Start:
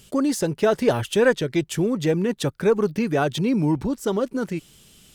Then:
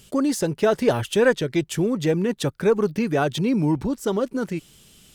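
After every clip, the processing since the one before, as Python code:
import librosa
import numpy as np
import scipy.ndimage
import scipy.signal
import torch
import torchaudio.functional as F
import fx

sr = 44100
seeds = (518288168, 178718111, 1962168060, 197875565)

y = x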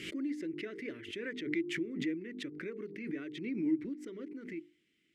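y = fx.double_bandpass(x, sr, hz=810.0, octaves=2.7)
y = fx.hum_notches(y, sr, base_hz=50, count=9)
y = fx.pre_swell(y, sr, db_per_s=62.0)
y = F.gain(torch.from_numpy(y), -7.5).numpy()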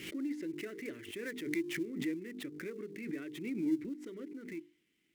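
y = fx.dead_time(x, sr, dead_ms=0.069)
y = F.gain(torch.from_numpy(y), -1.0).numpy()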